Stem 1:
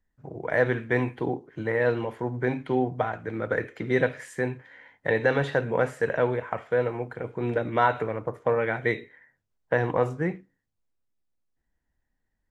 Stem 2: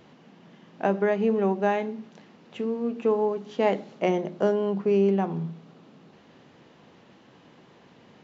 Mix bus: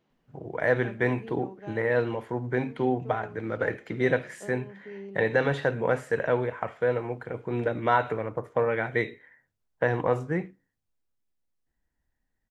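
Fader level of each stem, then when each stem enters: -1.0 dB, -20.0 dB; 0.10 s, 0.00 s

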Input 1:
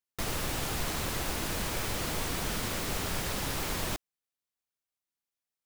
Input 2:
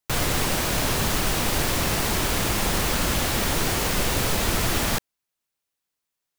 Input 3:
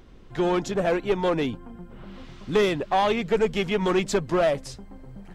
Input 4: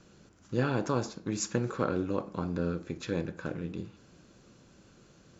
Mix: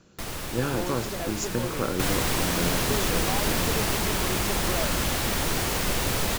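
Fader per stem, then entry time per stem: -1.0 dB, -2.5 dB, -12.0 dB, +1.0 dB; 0.00 s, 1.90 s, 0.35 s, 0.00 s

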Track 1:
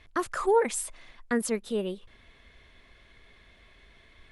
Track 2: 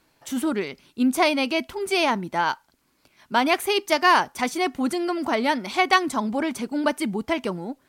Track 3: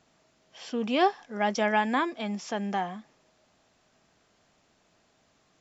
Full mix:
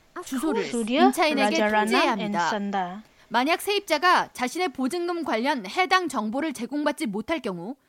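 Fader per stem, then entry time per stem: -7.5 dB, -2.0 dB, +3.0 dB; 0.00 s, 0.00 s, 0.00 s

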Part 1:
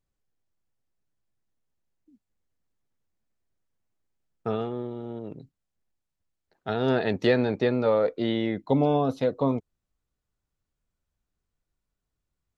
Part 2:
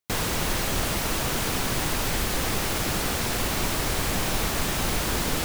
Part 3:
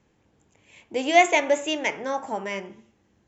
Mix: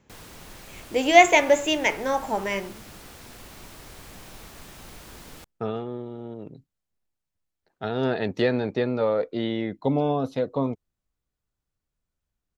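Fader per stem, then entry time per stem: -1.0 dB, -18.5 dB, +3.0 dB; 1.15 s, 0.00 s, 0.00 s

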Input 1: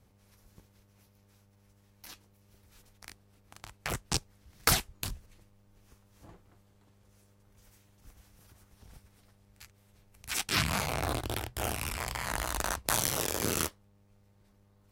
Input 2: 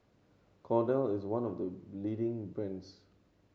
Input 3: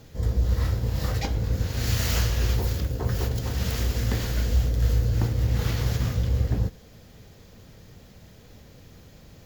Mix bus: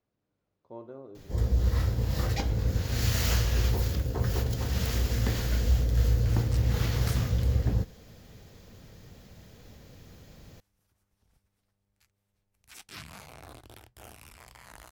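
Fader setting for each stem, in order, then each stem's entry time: -16.0 dB, -14.5 dB, -2.0 dB; 2.40 s, 0.00 s, 1.15 s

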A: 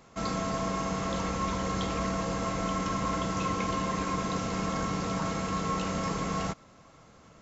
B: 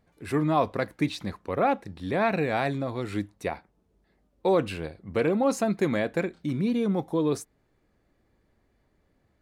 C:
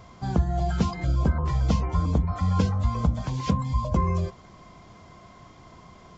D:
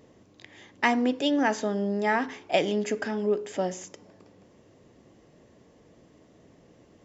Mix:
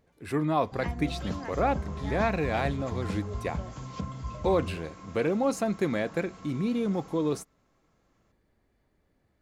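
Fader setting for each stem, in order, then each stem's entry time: -17.5 dB, -2.5 dB, -11.5 dB, -17.5 dB; 0.90 s, 0.00 s, 0.50 s, 0.00 s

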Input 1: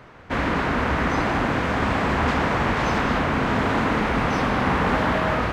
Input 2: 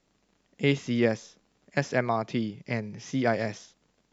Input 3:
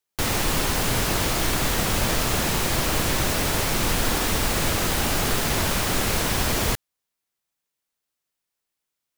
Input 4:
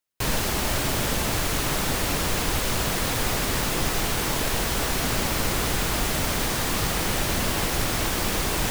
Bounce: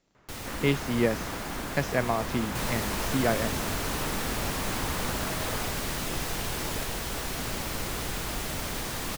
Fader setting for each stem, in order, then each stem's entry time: -15.0 dB, -1.0 dB, -15.0 dB, -8.0 dB; 0.15 s, 0.00 s, 0.10 s, 2.35 s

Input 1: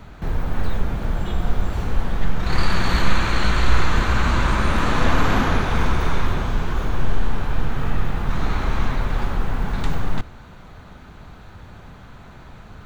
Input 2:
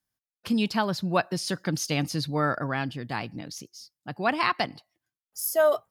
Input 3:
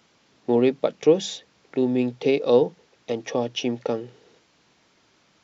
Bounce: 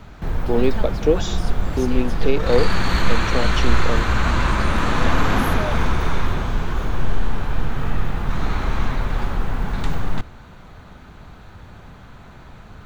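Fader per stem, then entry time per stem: 0.0 dB, -10.0 dB, -0.5 dB; 0.00 s, 0.00 s, 0.00 s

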